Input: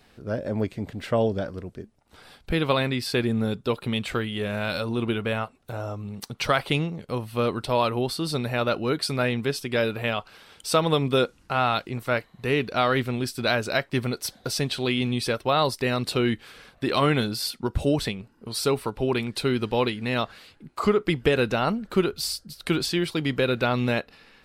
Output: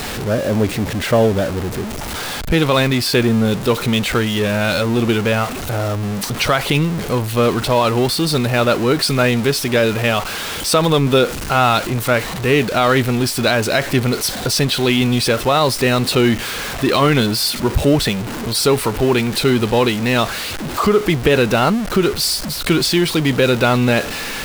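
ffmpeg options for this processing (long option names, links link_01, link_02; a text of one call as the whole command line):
ffmpeg -i in.wav -af "aeval=exprs='val(0)+0.5*0.0422*sgn(val(0))':channel_layout=same,alimiter=level_in=10.5dB:limit=-1dB:release=50:level=0:latency=1,volume=-3dB" out.wav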